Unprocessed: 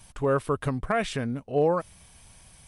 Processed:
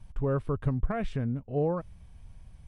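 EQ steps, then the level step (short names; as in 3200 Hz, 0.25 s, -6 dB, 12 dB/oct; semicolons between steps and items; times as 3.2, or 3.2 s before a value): RIAA curve playback; -9.0 dB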